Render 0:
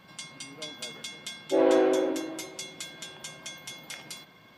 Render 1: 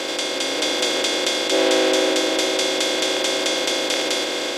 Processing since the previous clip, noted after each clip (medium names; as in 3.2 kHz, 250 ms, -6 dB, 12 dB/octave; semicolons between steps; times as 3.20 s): spectral levelling over time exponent 0.2; frequency weighting D; level rider gain up to 3 dB; trim -1 dB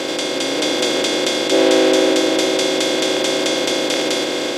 bass shelf 310 Hz +12 dB; trim +1 dB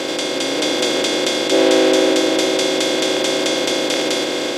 no audible change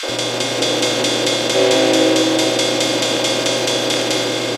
reverberation RT60 2.0 s, pre-delay 23 ms, DRR 9.5 dB; mains buzz 120 Hz, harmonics 13, -31 dBFS -2 dB/octave; three bands offset in time highs, mids, lows 30/90 ms, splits 340/1300 Hz; trim +2 dB